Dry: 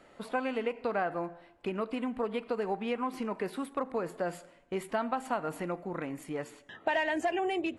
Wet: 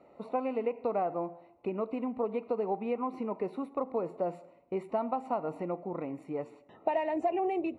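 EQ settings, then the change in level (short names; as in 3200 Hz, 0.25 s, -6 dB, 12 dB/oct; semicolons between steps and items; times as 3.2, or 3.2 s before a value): running mean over 27 samples; HPF 66 Hz; low shelf 410 Hz -9 dB; +6.5 dB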